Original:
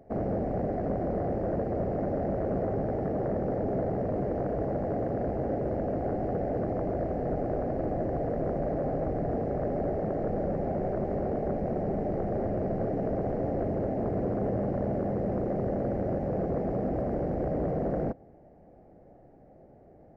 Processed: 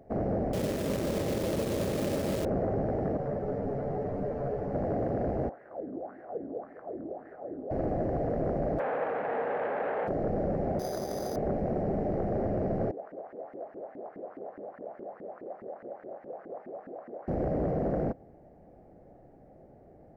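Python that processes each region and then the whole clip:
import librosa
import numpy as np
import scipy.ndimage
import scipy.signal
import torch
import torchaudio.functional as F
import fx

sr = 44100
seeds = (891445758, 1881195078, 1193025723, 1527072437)

y = fx.chain(x, sr, fx.delta_mod(bps=64000, step_db=-44.0),
    fx.notch_comb(f0_hz=720.0),
    fx.quant_companded(bits=4), at=(0.53, 2.45))
y = fx.chain(y, sr, fx.notch(hz=310.0, q=7.7),
    fx.comb(ms=6.9, depth=0.45),
    fx.ensemble(), at=(3.17, 4.74))
y = fx.chain(y, sr, fx.wah_lfo(hz=1.8, low_hz=270.0, high_hz=1800.0, q=4.5),
    fx.echo_single(ms=214, db=-13.0), at=(5.49, 7.71))
y = fx.envelope_flatten(y, sr, power=0.6, at=(8.78, 10.07), fade=0.02)
y = fx.clip_hard(y, sr, threshold_db=-31.0, at=(8.78, 10.07), fade=0.02)
y = fx.cabinet(y, sr, low_hz=330.0, low_slope=12, high_hz=2400.0, hz=(340.0, 480.0, 860.0, 1600.0), db=(-5, 9, 7, 6), at=(8.78, 10.07), fade=0.02)
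y = fx.chain(y, sr, fx.tilt_eq(slope=3.0),
    fx.resample_bad(factor=8, down='none', up='hold'), at=(10.79, 11.36))
y = fx.chain(y, sr, fx.highpass(hz=150.0, slope=6),
    fx.low_shelf(hz=440.0, db=-10.5),
    fx.filter_lfo_bandpass(shape='saw_up', hz=4.8, low_hz=260.0, high_hz=1900.0, q=2.7), at=(12.91, 17.28))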